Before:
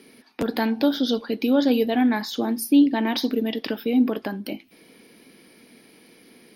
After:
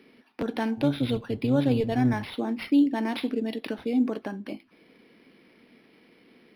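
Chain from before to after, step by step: 0.77–2.33 octaver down 1 oct, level -3 dB; decimation joined by straight lines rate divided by 6×; gain -4.5 dB

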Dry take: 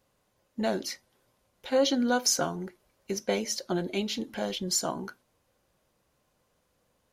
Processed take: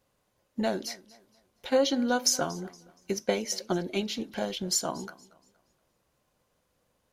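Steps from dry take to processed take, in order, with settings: transient shaper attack +4 dB, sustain 0 dB; warbling echo 0.235 s, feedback 33%, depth 81 cents, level -21 dB; gain -1.5 dB

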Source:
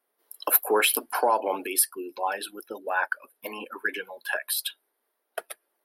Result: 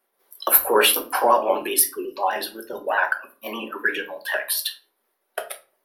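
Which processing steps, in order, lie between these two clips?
trilling pitch shifter +1.5 st, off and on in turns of 62 ms; shoebox room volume 240 m³, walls furnished, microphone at 1.1 m; gain +4.5 dB

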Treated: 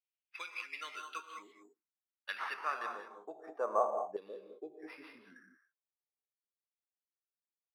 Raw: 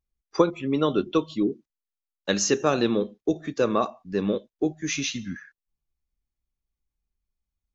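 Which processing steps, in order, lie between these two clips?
non-linear reverb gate 0.23 s rising, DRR 5.5 dB; LFO band-pass saw down 0.48 Hz 780–3300 Hz; careless resampling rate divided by 6×, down none, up hold; band-pass sweep 2500 Hz -> 440 Hz, 1.11–4.46; gain +4.5 dB

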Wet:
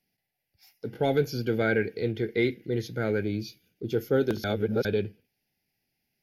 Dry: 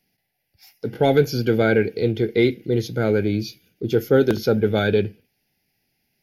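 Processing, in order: 1.57–3.22 bell 1800 Hz +7.5 dB 0.49 oct; 4.44–4.85 reverse; gain -8 dB

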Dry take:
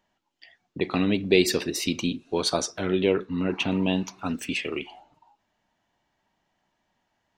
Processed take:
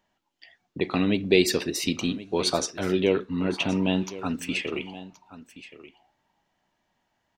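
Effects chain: echo 1.074 s -16.5 dB

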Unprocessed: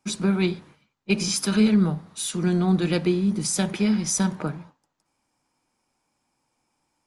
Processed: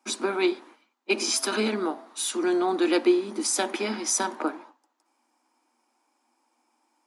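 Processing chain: rippled Chebyshev high-pass 230 Hz, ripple 6 dB; 1.31–2.05 whine 660 Hz -52 dBFS; gain +6 dB

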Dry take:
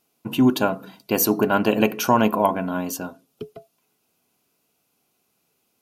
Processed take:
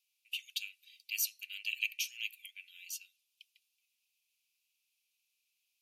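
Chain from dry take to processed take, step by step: steep high-pass 2300 Hz 72 dB/oct; tilt -3.5 dB/oct

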